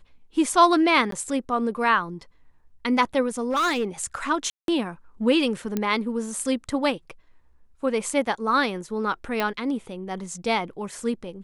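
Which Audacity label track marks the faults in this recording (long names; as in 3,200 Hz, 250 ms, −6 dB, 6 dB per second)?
1.110000	1.120000	drop-out 13 ms
3.500000	3.850000	clipping −19.5 dBFS
4.500000	4.680000	drop-out 182 ms
5.770000	5.770000	click −12 dBFS
9.400000	9.400000	click −12 dBFS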